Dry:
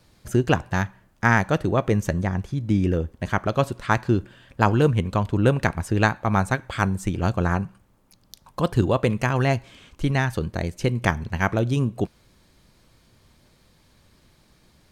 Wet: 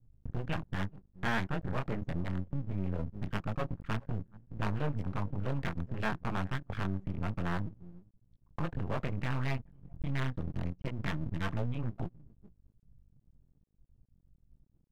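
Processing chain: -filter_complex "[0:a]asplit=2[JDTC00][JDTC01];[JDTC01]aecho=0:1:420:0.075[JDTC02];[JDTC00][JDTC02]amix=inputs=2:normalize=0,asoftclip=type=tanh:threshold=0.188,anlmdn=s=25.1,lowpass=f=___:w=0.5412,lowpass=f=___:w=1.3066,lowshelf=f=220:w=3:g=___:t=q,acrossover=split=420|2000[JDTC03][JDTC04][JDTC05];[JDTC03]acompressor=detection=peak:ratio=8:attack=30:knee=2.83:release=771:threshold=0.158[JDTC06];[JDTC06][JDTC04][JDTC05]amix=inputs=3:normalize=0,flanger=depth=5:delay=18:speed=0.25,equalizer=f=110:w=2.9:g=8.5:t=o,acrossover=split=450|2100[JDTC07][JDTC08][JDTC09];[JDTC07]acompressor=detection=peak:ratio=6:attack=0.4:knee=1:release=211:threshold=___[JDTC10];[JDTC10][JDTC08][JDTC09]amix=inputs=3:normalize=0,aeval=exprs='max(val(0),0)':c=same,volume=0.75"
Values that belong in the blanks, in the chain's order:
2800, 2800, 7.5, 0.0501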